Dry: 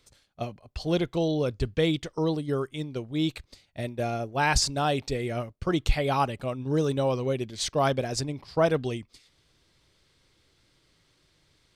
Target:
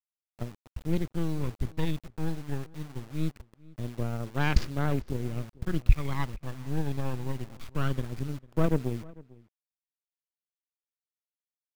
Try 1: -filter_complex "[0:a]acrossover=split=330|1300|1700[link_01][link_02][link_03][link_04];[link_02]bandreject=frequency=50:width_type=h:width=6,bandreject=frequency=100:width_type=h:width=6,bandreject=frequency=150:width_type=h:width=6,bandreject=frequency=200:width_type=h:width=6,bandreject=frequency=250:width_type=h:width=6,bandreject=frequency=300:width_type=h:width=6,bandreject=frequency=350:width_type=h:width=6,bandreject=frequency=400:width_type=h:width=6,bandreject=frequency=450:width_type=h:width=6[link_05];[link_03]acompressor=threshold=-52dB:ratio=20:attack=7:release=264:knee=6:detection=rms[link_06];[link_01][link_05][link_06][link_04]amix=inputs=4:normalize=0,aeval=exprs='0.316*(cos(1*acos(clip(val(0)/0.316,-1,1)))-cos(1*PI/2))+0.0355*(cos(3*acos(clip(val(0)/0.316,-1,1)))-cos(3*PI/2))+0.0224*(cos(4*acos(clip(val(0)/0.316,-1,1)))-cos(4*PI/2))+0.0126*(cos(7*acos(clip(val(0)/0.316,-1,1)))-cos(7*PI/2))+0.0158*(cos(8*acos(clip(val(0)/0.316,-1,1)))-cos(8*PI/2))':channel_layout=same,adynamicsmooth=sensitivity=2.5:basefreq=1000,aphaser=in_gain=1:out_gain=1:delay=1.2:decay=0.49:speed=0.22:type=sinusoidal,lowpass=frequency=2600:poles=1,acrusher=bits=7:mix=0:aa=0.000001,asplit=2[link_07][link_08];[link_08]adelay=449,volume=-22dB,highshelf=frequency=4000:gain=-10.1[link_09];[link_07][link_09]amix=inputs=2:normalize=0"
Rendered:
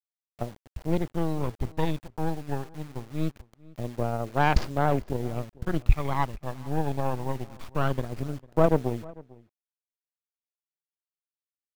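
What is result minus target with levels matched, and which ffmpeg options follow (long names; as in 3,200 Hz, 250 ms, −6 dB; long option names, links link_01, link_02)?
1,000 Hz band +7.0 dB
-filter_complex "[0:a]acrossover=split=330|1300|1700[link_01][link_02][link_03][link_04];[link_02]bandreject=frequency=50:width_type=h:width=6,bandreject=frequency=100:width_type=h:width=6,bandreject=frequency=150:width_type=h:width=6,bandreject=frequency=200:width_type=h:width=6,bandreject=frequency=250:width_type=h:width=6,bandreject=frequency=300:width_type=h:width=6,bandreject=frequency=350:width_type=h:width=6,bandreject=frequency=400:width_type=h:width=6,bandreject=frequency=450:width_type=h:width=6[link_05];[link_03]acompressor=threshold=-52dB:ratio=20:attack=7:release=264:knee=6:detection=rms[link_06];[link_01][link_05][link_06][link_04]amix=inputs=4:normalize=0,aeval=exprs='0.316*(cos(1*acos(clip(val(0)/0.316,-1,1)))-cos(1*PI/2))+0.0355*(cos(3*acos(clip(val(0)/0.316,-1,1)))-cos(3*PI/2))+0.0224*(cos(4*acos(clip(val(0)/0.316,-1,1)))-cos(4*PI/2))+0.0126*(cos(7*acos(clip(val(0)/0.316,-1,1)))-cos(7*PI/2))+0.0158*(cos(8*acos(clip(val(0)/0.316,-1,1)))-cos(8*PI/2))':channel_layout=same,adynamicsmooth=sensitivity=2.5:basefreq=1000,aphaser=in_gain=1:out_gain=1:delay=1.2:decay=0.49:speed=0.22:type=sinusoidal,lowpass=frequency=2600:poles=1,equalizer=frequency=750:width=1:gain=-12.5,acrusher=bits=7:mix=0:aa=0.000001,asplit=2[link_07][link_08];[link_08]adelay=449,volume=-22dB,highshelf=frequency=4000:gain=-10.1[link_09];[link_07][link_09]amix=inputs=2:normalize=0"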